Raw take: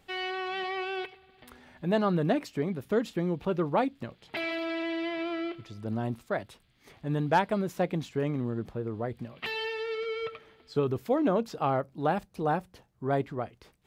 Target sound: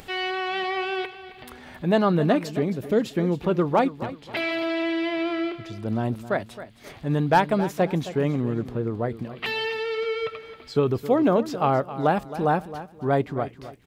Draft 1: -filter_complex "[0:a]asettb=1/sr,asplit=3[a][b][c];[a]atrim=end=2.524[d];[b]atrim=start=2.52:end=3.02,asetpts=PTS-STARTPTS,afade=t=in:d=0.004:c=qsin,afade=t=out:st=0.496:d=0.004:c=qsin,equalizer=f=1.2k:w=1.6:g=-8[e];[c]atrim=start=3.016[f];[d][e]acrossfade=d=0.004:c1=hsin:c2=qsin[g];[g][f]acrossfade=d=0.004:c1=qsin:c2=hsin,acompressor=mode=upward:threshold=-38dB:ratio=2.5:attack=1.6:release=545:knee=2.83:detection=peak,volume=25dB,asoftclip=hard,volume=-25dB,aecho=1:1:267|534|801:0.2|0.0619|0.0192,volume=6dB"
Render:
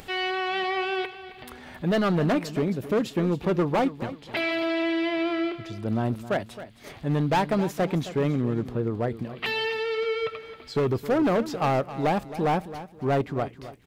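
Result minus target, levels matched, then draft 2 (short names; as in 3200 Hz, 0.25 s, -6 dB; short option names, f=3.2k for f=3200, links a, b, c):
overloaded stage: distortion +24 dB
-filter_complex "[0:a]asettb=1/sr,asplit=3[a][b][c];[a]atrim=end=2.524[d];[b]atrim=start=2.52:end=3.02,asetpts=PTS-STARTPTS,afade=t=in:d=0.004:c=qsin,afade=t=out:st=0.496:d=0.004:c=qsin,equalizer=f=1.2k:w=1.6:g=-8[e];[c]atrim=start=3.016[f];[d][e]acrossfade=d=0.004:c1=hsin:c2=qsin[g];[g][f]acrossfade=d=0.004:c1=qsin:c2=hsin,acompressor=mode=upward:threshold=-38dB:ratio=2.5:attack=1.6:release=545:knee=2.83:detection=peak,volume=15dB,asoftclip=hard,volume=-15dB,aecho=1:1:267|534|801:0.2|0.0619|0.0192,volume=6dB"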